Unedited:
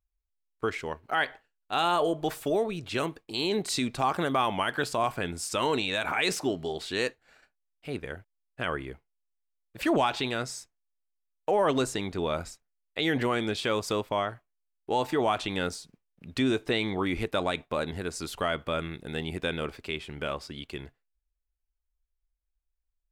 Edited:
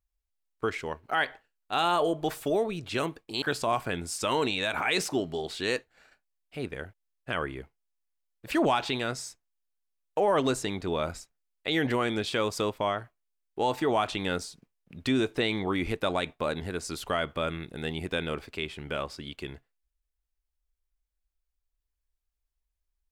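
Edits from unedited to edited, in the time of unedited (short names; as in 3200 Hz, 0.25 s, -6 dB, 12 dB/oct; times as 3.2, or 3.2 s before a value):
3.42–4.73 cut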